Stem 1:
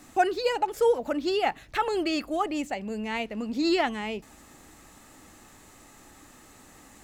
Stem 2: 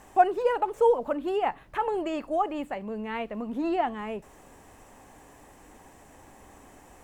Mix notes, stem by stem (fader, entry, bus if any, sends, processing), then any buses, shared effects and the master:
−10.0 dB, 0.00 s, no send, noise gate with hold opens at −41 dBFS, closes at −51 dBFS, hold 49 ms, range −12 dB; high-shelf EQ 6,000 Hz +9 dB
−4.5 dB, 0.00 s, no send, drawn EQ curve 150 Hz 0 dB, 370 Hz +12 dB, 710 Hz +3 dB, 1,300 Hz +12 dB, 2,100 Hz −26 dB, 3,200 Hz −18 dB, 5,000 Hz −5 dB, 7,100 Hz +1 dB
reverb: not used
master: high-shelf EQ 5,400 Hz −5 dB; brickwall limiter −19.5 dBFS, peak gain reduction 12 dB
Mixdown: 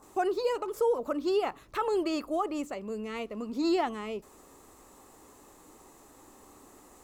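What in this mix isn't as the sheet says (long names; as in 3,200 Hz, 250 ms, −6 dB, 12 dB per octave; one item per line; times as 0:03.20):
stem 2 −4.5 dB → −11.0 dB
master: missing high-shelf EQ 5,400 Hz −5 dB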